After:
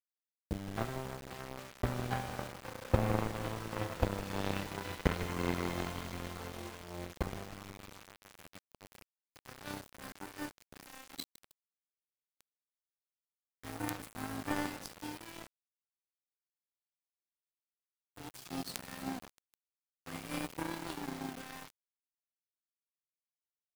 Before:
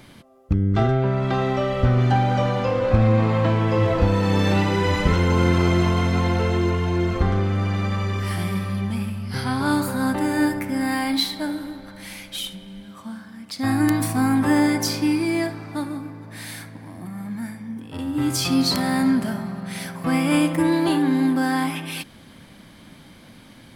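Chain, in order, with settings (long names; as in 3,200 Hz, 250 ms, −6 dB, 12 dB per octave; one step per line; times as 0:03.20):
power curve on the samples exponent 3
echo with shifted repeats 156 ms, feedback 62%, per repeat −41 Hz, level −15.5 dB
bit reduction 7 bits
level −4 dB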